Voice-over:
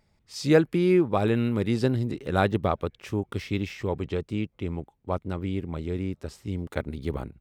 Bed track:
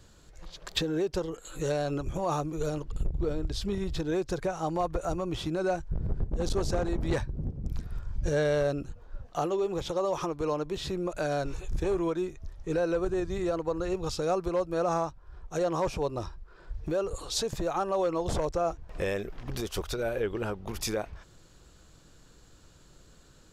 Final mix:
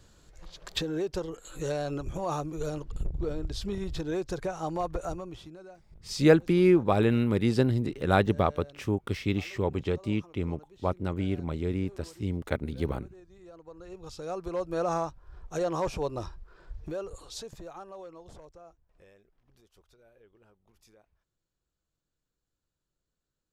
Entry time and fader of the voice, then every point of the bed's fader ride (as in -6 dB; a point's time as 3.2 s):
5.75 s, 0.0 dB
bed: 5.05 s -2 dB
5.75 s -22.5 dB
13.37 s -22.5 dB
14.73 s -1 dB
16.46 s -1 dB
19.3 s -30 dB